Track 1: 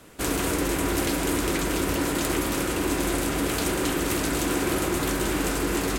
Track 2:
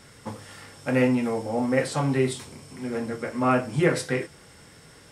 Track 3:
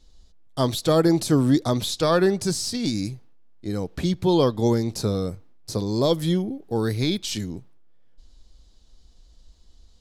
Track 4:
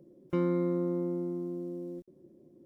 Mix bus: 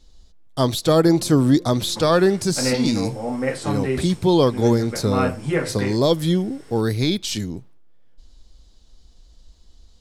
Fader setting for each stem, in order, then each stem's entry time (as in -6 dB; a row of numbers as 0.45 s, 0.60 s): mute, -0.5 dB, +3.0 dB, -11.0 dB; mute, 1.70 s, 0.00 s, 0.75 s